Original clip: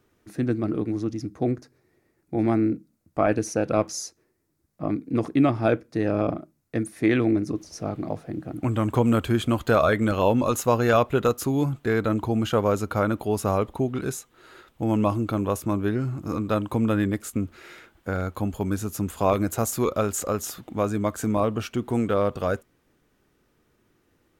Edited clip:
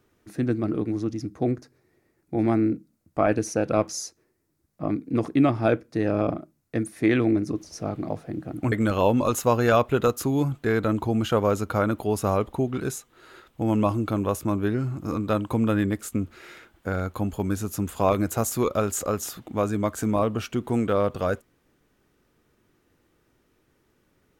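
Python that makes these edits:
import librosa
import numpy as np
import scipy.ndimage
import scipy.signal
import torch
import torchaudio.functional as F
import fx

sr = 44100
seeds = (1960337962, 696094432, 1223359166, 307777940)

y = fx.edit(x, sr, fx.cut(start_s=8.72, length_s=1.21), tone=tone)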